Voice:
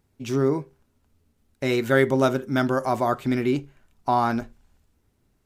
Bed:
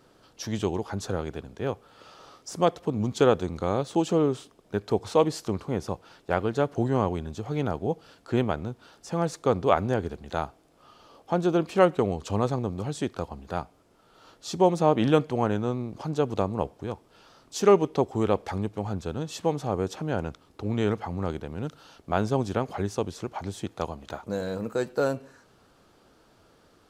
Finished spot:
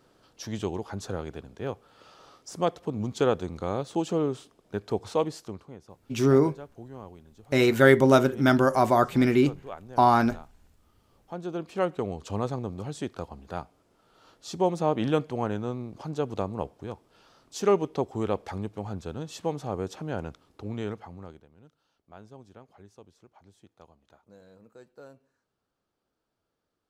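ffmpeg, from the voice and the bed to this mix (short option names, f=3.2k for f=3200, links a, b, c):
-filter_complex "[0:a]adelay=5900,volume=2dB[a];[1:a]volume=11dB,afade=t=out:st=5.09:d=0.69:silence=0.177828,afade=t=in:st=10.99:d=1.36:silence=0.188365,afade=t=out:st=20.43:d=1.06:silence=0.112202[b];[a][b]amix=inputs=2:normalize=0"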